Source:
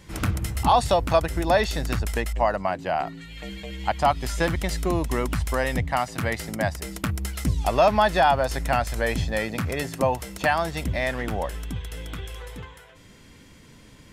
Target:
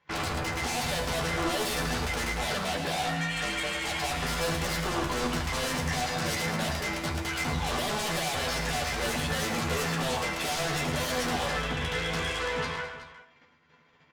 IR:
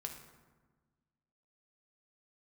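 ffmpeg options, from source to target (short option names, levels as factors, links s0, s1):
-filter_complex "[0:a]highpass=f=170:p=1,agate=range=0.0398:threshold=0.00398:ratio=16:detection=peak,acontrast=55,aresample=16000,volume=33.5,asoftclip=hard,volume=0.0299,aresample=44100,adynamicsmooth=sensitivity=3:basefreq=2100,acrossover=split=710[s0][s1];[s1]aeval=exprs='0.0422*sin(PI/2*3.98*val(0)/0.0422)':c=same[s2];[s0][s2]amix=inputs=2:normalize=0,asplit=2[s3][s4];[s4]adelay=12,volume=0.562[s5];[s3][s5]amix=inputs=2:normalize=0,aecho=1:1:110|210|372:0.376|0.188|0.178[s6];[1:a]atrim=start_sample=2205,atrim=end_sample=4410[s7];[s6][s7]afir=irnorm=-1:irlink=0"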